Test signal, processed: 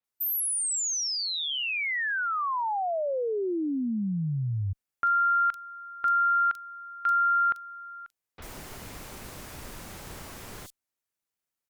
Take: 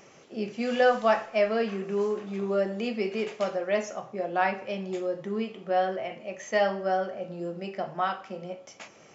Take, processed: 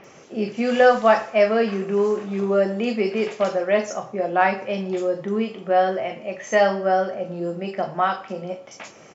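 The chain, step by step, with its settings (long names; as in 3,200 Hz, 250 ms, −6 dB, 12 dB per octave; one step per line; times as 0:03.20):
multiband delay without the direct sound lows, highs 40 ms, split 3,700 Hz
harmonic generator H 2 −31 dB, 5 −44 dB, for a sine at −11 dBFS
level +7 dB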